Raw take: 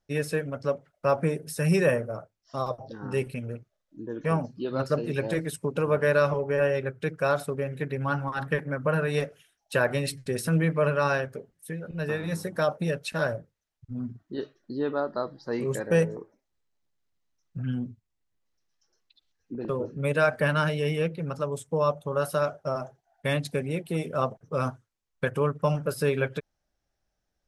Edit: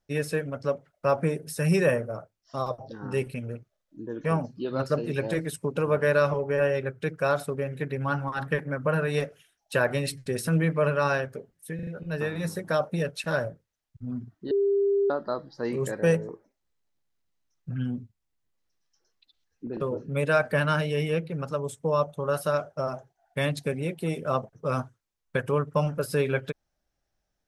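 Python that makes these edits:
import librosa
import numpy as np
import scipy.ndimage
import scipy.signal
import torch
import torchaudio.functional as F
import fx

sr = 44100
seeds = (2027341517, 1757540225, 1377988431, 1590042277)

y = fx.edit(x, sr, fx.stutter(start_s=11.75, slice_s=0.04, count=4),
    fx.bleep(start_s=14.39, length_s=0.59, hz=399.0, db=-20.0), tone=tone)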